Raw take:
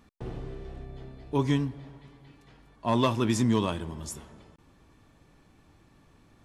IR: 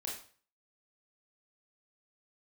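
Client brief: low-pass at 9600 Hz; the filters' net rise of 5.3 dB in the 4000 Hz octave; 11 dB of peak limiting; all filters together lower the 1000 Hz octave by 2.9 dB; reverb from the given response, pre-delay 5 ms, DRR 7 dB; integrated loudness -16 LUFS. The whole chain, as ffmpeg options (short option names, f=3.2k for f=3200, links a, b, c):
-filter_complex "[0:a]lowpass=9.6k,equalizer=f=1k:t=o:g=-3.5,equalizer=f=4k:t=o:g=7,alimiter=limit=-23dB:level=0:latency=1,asplit=2[a][b];[1:a]atrim=start_sample=2205,adelay=5[c];[b][c]afir=irnorm=-1:irlink=0,volume=-7dB[d];[a][d]amix=inputs=2:normalize=0,volume=19dB"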